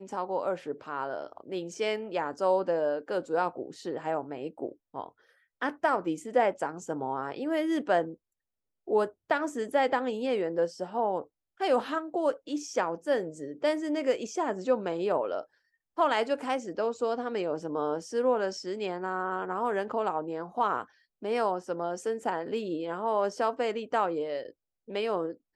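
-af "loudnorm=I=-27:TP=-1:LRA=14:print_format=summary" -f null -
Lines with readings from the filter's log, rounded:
Input Integrated:    -30.8 LUFS
Input True Peak:     -13.2 dBTP
Input LRA:             1.6 LU
Input Threshold:     -41.0 LUFS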